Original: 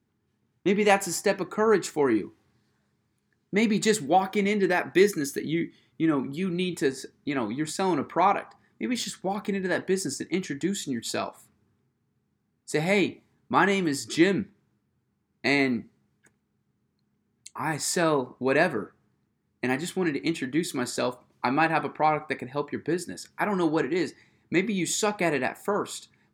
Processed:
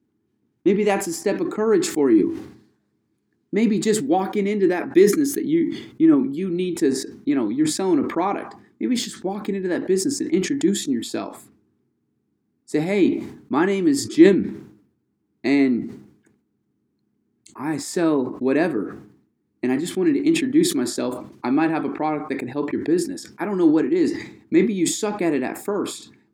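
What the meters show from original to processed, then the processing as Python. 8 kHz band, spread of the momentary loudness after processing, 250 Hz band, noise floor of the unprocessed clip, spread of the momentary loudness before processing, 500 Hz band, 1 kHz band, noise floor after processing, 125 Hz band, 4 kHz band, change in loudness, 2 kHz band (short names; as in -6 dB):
+4.0 dB, 11 LU, +8.5 dB, -75 dBFS, 8 LU, +5.0 dB, -2.0 dB, -72 dBFS, +2.5 dB, +2.0 dB, +5.5 dB, -2.5 dB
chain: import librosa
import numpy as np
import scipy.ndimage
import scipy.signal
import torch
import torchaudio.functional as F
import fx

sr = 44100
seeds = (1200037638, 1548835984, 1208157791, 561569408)

y = fx.peak_eq(x, sr, hz=300.0, db=14.5, octaves=1.0)
y = fx.sustainer(y, sr, db_per_s=91.0)
y = y * librosa.db_to_amplitude(-4.0)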